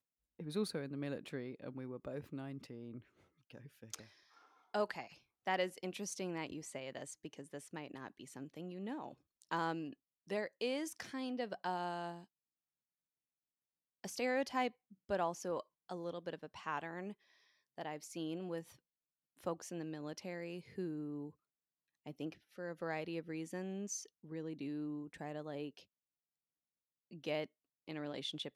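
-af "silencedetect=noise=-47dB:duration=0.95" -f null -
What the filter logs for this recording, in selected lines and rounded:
silence_start: 12.20
silence_end: 14.04 | silence_duration: 1.84
silence_start: 25.79
silence_end: 27.13 | silence_duration: 1.33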